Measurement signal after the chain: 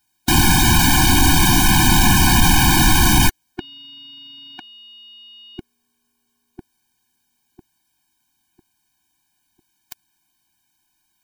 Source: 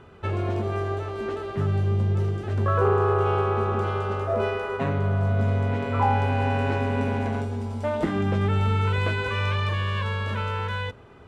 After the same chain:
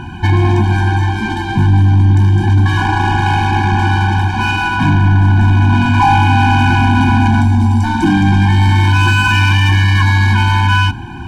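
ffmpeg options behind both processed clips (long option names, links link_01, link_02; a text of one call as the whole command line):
ffmpeg -i in.wav -af "apsyclip=24dB,acontrast=63,afftfilt=real='re*eq(mod(floor(b*sr/1024/360),2),0)':imag='im*eq(mod(floor(b*sr/1024/360),2),0)':win_size=1024:overlap=0.75,volume=-6dB" out.wav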